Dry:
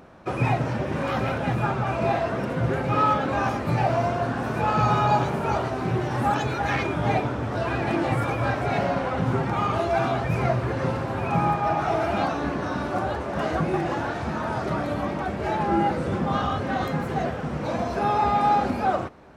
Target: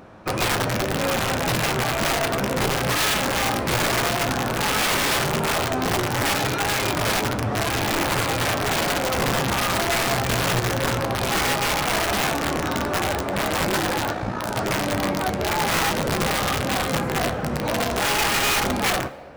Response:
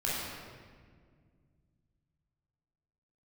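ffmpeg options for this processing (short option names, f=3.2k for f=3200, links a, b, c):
-filter_complex "[0:a]asplit=2[a][b];[b]alimiter=limit=-20dB:level=0:latency=1:release=14,volume=0dB[c];[a][c]amix=inputs=2:normalize=0,asplit=3[d][e][f];[d]afade=t=out:st=14.13:d=0.02[g];[e]aeval=exprs='val(0)*sin(2*PI*29*n/s)':c=same,afade=t=in:st=14.13:d=0.02,afade=t=out:st=14.54:d=0.02[h];[f]afade=t=in:st=14.54:d=0.02[i];[g][h][i]amix=inputs=3:normalize=0,aeval=exprs='(mod(5.01*val(0)+1,2)-1)/5.01':c=same,flanger=delay=9.4:depth=7.2:regen=70:speed=0.14:shape=sinusoidal,asplit=2[j][k];[k]highpass=f=530:t=q:w=4.9[l];[1:a]atrim=start_sample=2205,adelay=59[m];[l][m]afir=irnorm=-1:irlink=0,volume=-29dB[n];[j][n]amix=inputs=2:normalize=0,volume=2dB"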